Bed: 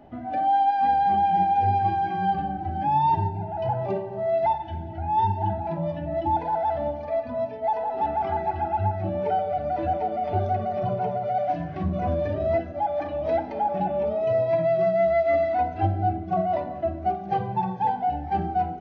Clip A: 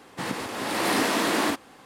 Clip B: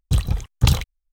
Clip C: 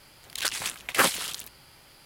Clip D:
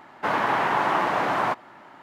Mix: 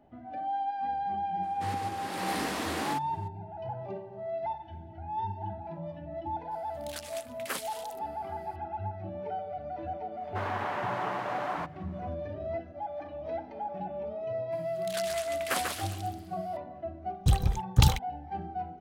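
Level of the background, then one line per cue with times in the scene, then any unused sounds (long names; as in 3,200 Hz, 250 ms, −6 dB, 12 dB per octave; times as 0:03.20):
bed −11.5 dB
0:01.43: mix in A −9.5 dB
0:06.51: mix in C −14.5 dB + high-shelf EQ 11,000 Hz +4.5 dB
0:10.12: mix in D −11.5 dB, fades 0.10 s
0:14.52: mix in C −10 dB + feedback echo with a swinging delay time 135 ms, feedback 34%, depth 204 cents, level −4.5 dB
0:17.15: mix in B −4.5 dB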